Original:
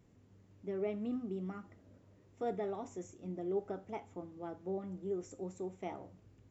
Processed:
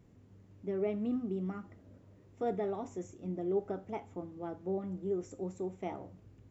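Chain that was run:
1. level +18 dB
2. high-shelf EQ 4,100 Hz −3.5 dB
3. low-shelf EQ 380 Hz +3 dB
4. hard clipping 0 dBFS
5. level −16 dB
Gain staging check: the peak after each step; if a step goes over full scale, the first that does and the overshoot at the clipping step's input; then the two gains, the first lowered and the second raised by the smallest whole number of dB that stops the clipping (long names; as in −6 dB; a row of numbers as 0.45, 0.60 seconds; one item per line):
−7.5, −7.5, −6.0, −6.0, −22.0 dBFS
no step passes full scale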